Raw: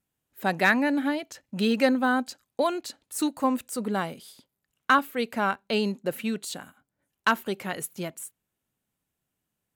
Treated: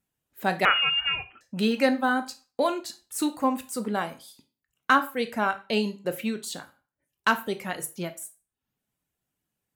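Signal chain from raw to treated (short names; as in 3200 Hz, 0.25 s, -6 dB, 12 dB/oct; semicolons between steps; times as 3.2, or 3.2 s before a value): reverb removal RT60 0.58 s; on a send at -8 dB: reverb RT60 0.35 s, pre-delay 13 ms; 0.65–1.41 on the sum: inverted band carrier 3100 Hz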